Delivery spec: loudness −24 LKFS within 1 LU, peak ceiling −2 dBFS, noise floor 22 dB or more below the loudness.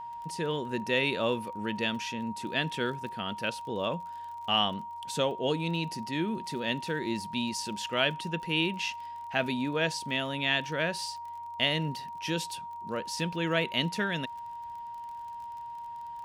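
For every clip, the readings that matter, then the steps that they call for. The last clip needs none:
crackle rate 35 per second; interfering tone 940 Hz; level of the tone −38 dBFS; integrated loudness −31.5 LKFS; sample peak −11.5 dBFS; target loudness −24.0 LKFS
→ click removal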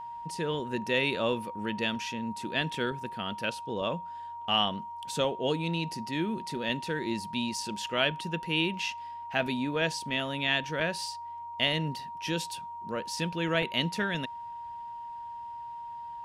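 crackle rate 0 per second; interfering tone 940 Hz; level of the tone −38 dBFS
→ notch filter 940 Hz, Q 30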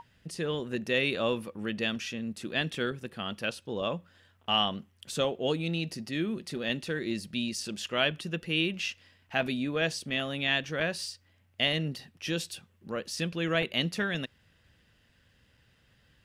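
interfering tone none found; integrated loudness −31.5 LKFS; sample peak −11.5 dBFS; target loudness −24.0 LKFS
→ level +7.5 dB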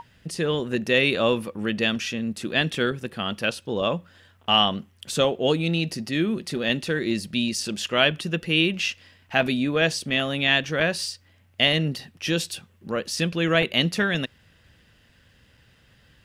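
integrated loudness −24.0 LKFS; sample peak −4.0 dBFS; background noise floor −59 dBFS

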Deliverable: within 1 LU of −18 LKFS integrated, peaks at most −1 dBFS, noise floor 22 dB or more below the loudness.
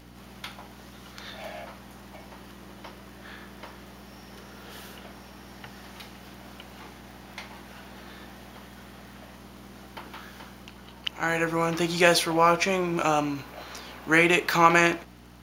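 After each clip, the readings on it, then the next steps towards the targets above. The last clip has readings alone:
crackle rate 37 per second; mains hum 60 Hz; hum harmonics up to 300 Hz; level of the hum −49 dBFS; integrated loudness −23.0 LKFS; sample peak −2.5 dBFS; target loudness −18.0 LKFS
→ click removal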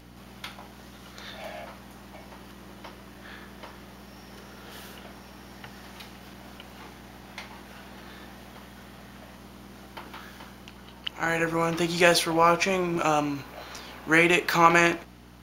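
crackle rate 0.26 per second; mains hum 60 Hz; hum harmonics up to 300 Hz; level of the hum −49 dBFS
→ hum removal 60 Hz, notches 5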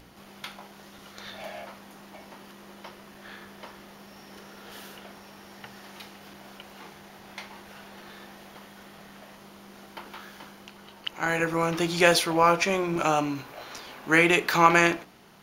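mains hum none found; integrated loudness −23.0 LKFS; sample peak −2.5 dBFS; target loudness −18.0 LKFS
→ level +5 dB
brickwall limiter −1 dBFS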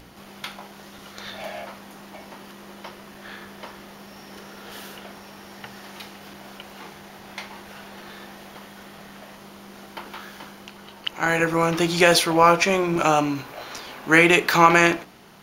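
integrated loudness −18.5 LKFS; sample peak −1.0 dBFS; background noise floor −45 dBFS

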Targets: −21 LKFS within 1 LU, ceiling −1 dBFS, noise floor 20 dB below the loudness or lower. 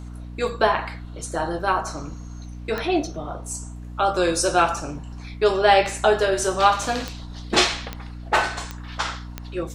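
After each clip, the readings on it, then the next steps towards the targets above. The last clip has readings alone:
number of clicks 5; mains hum 60 Hz; hum harmonics up to 300 Hz; level of the hum −33 dBFS; integrated loudness −22.5 LKFS; sample peak −1.5 dBFS; target loudness −21.0 LKFS
→ click removal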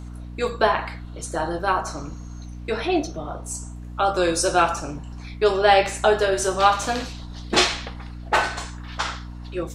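number of clicks 0; mains hum 60 Hz; hum harmonics up to 300 Hz; level of the hum −33 dBFS
→ mains-hum notches 60/120/180/240/300 Hz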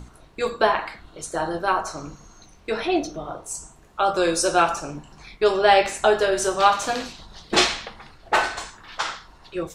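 mains hum none found; integrated loudness −22.5 LKFS; sample peak −1.5 dBFS; target loudness −21.0 LKFS
→ level +1.5 dB
brickwall limiter −1 dBFS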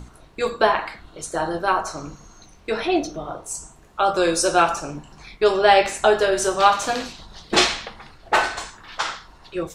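integrated loudness −21.0 LKFS; sample peak −1.0 dBFS; background noise floor −50 dBFS

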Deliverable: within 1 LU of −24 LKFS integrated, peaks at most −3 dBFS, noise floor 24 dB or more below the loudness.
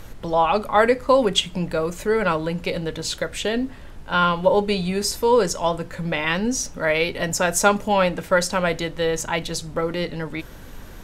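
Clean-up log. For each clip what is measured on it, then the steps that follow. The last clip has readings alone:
background noise floor −39 dBFS; target noise floor −46 dBFS; integrated loudness −22.0 LKFS; sample peak −1.5 dBFS; target loudness −24.0 LKFS
→ noise reduction from a noise print 7 dB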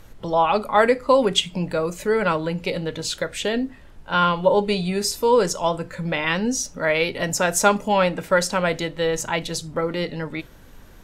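background noise floor −46 dBFS; integrated loudness −21.5 LKFS; sample peak −1.5 dBFS; target loudness −24.0 LKFS
→ level −2.5 dB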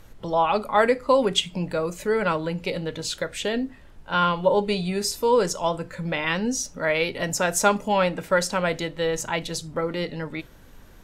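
integrated loudness −24.0 LKFS; sample peak −4.0 dBFS; background noise floor −48 dBFS

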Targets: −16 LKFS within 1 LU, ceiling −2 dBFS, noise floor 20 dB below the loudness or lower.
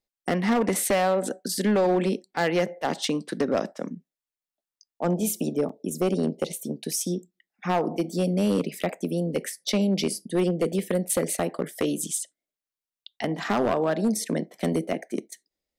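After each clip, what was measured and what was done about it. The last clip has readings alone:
share of clipped samples 1.3%; peaks flattened at −17.0 dBFS; number of dropouts 1; longest dropout 4.2 ms; integrated loudness −26.5 LKFS; sample peak −17.0 dBFS; target loudness −16.0 LKFS
→ clipped peaks rebuilt −17 dBFS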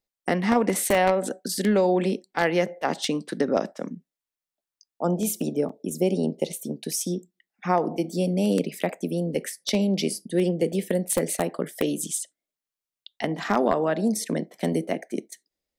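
share of clipped samples 0.0%; number of dropouts 1; longest dropout 4.2 ms
→ repair the gap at 0:05.69, 4.2 ms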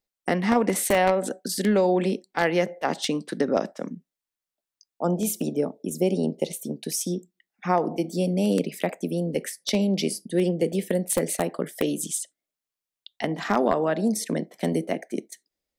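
number of dropouts 0; integrated loudness −25.5 LKFS; sample peak −8.0 dBFS; target loudness −16.0 LKFS
→ level +9.5 dB
brickwall limiter −2 dBFS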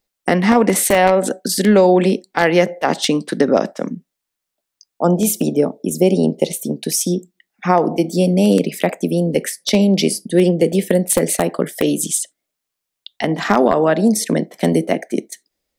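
integrated loudness −16.5 LKFS; sample peak −2.0 dBFS; background noise floor −81 dBFS

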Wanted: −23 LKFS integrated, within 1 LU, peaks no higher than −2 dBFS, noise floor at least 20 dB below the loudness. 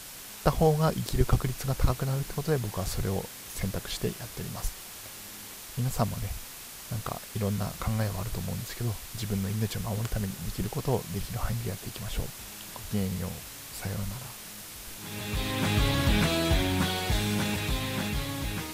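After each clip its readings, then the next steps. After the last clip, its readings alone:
background noise floor −44 dBFS; target noise floor −51 dBFS; integrated loudness −31.0 LKFS; sample peak −7.5 dBFS; target loudness −23.0 LKFS
→ broadband denoise 7 dB, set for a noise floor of −44 dBFS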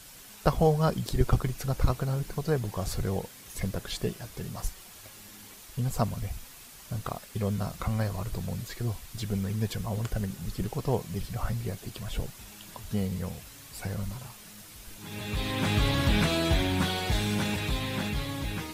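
background noise floor −49 dBFS; target noise floor −51 dBFS
→ broadband denoise 6 dB, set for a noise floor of −49 dBFS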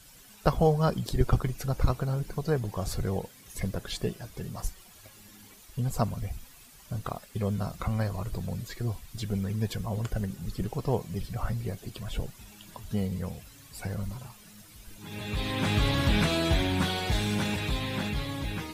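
background noise floor −53 dBFS; integrated loudness −31.0 LKFS; sample peak −7.5 dBFS; target loudness −23.0 LKFS
→ level +8 dB
brickwall limiter −2 dBFS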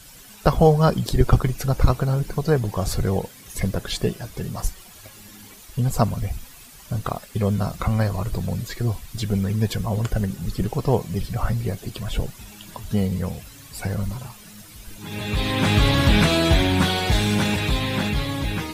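integrated loudness −23.0 LKFS; sample peak −2.0 dBFS; background noise floor −45 dBFS

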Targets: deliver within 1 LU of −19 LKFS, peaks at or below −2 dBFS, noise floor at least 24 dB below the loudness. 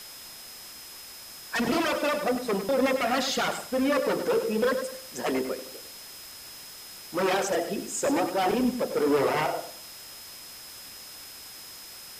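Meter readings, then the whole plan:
interfering tone 5,100 Hz; level of the tone −46 dBFS; background noise floor −44 dBFS; target noise floor −51 dBFS; integrated loudness −27.0 LKFS; sample peak −14.5 dBFS; target loudness −19.0 LKFS
→ notch filter 5,100 Hz, Q 30
broadband denoise 7 dB, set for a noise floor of −44 dBFS
level +8 dB

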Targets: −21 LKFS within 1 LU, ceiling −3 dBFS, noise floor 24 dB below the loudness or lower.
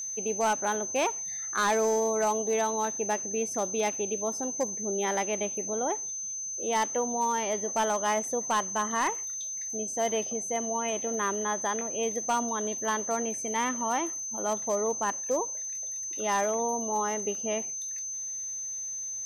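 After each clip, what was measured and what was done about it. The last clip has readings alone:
share of clipped samples 0.4%; peaks flattened at −20.5 dBFS; interfering tone 6,200 Hz; level of the tone −33 dBFS; integrated loudness −29.0 LKFS; sample peak −20.5 dBFS; target loudness −21.0 LKFS
→ clipped peaks rebuilt −20.5 dBFS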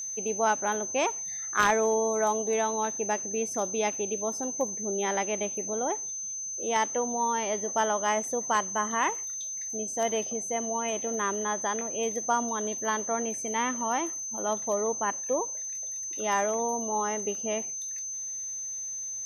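share of clipped samples 0.0%; interfering tone 6,200 Hz; level of the tone −33 dBFS
→ notch filter 6,200 Hz, Q 30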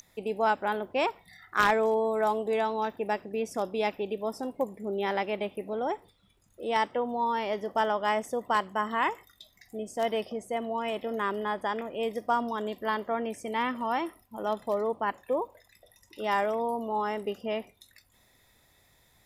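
interfering tone none found; integrated loudness −30.5 LKFS; sample peak −11.0 dBFS; target loudness −21.0 LKFS
→ level +9.5 dB
brickwall limiter −3 dBFS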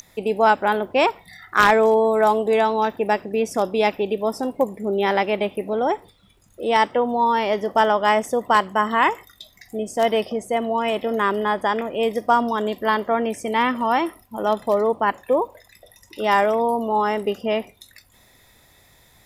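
integrated loudness −21.0 LKFS; sample peak −3.0 dBFS; background noise floor −55 dBFS

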